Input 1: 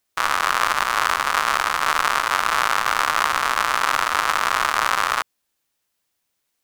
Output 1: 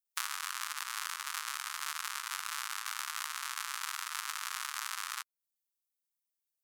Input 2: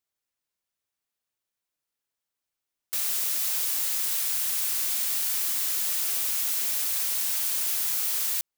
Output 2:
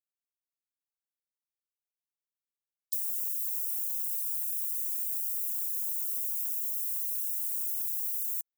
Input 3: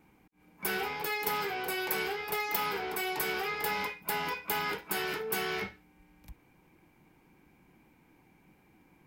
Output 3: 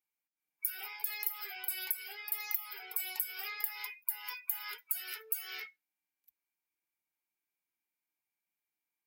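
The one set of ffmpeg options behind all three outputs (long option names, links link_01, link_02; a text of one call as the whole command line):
ffmpeg -i in.wav -af "aderivative,acompressor=threshold=-37dB:ratio=5,afftdn=noise_reduction=22:noise_floor=-51,volume=5.5dB" out.wav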